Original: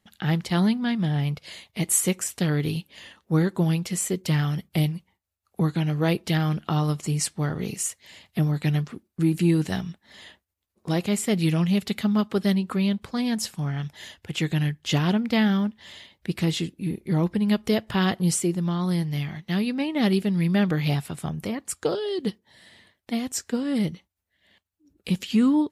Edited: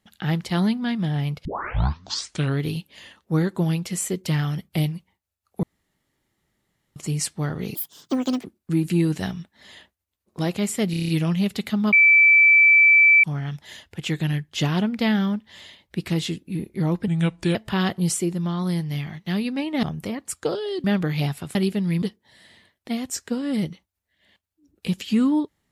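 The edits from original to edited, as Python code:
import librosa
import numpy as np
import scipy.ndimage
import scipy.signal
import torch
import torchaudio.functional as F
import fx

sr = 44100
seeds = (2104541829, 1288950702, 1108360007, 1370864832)

y = fx.edit(x, sr, fx.tape_start(start_s=1.45, length_s=1.16),
    fx.room_tone_fill(start_s=5.63, length_s=1.33),
    fx.speed_span(start_s=7.75, length_s=1.19, speed=1.71),
    fx.stutter(start_s=11.4, slice_s=0.03, count=7),
    fx.bleep(start_s=12.24, length_s=1.31, hz=2320.0, db=-10.5),
    fx.speed_span(start_s=17.39, length_s=0.38, speed=0.8),
    fx.swap(start_s=20.05, length_s=0.47, other_s=21.23, other_length_s=1.01), tone=tone)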